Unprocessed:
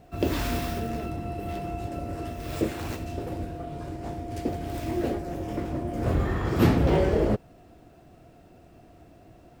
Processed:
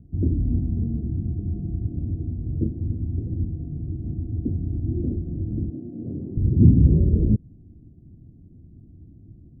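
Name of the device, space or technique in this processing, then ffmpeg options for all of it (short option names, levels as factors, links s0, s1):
the neighbour's flat through the wall: -filter_complex "[0:a]asettb=1/sr,asplit=3[s0][s1][s2];[s0]atrim=end=5.704[s3];[s1]atrim=start=5.7:end=6.37,asetpts=PTS-STARTPTS,afade=t=in:d=0.004:c=qsin,afade=t=out:st=0.666:d=0.004:c=qsin,highpass=280[s4];[s2]atrim=start=6.366[s5];[s3][s4]acrossfade=d=0.004:c1=hsin:c2=qsin[s6];[s6][s5]acrossfade=d=0.004:c1=qsin:c2=hsin,lowpass=f=260:w=0.5412,lowpass=f=260:w=1.3066,equalizer=f=93:t=o:w=0.88:g=4.5,volume=2.11"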